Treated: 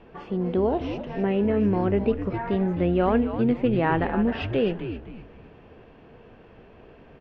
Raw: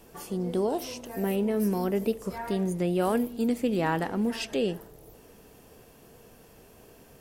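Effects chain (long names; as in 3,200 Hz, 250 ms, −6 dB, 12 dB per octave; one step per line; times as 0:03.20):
low-pass filter 2,900 Hz 24 dB per octave
echo with shifted repeats 259 ms, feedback 33%, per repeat −110 Hz, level −9 dB
level +4 dB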